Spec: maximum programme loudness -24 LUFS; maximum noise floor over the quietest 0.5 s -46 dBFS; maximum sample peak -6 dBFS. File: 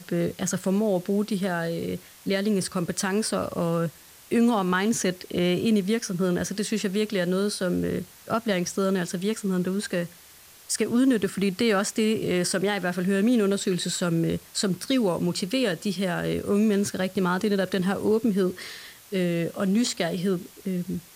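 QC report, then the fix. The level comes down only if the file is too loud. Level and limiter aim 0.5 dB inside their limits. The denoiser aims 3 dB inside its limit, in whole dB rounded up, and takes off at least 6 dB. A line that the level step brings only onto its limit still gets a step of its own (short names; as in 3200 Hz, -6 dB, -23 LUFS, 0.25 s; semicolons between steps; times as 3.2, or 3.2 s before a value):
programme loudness -25.5 LUFS: OK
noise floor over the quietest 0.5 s -50 dBFS: OK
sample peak -12.5 dBFS: OK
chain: none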